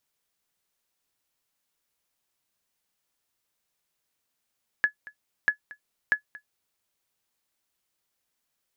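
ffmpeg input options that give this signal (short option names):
-f lavfi -i "aevalsrc='0.251*(sin(2*PI*1700*mod(t,0.64))*exp(-6.91*mod(t,0.64)/0.1)+0.0891*sin(2*PI*1700*max(mod(t,0.64)-0.23,0))*exp(-6.91*max(mod(t,0.64)-0.23,0)/0.1))':d=1.92:s=44100"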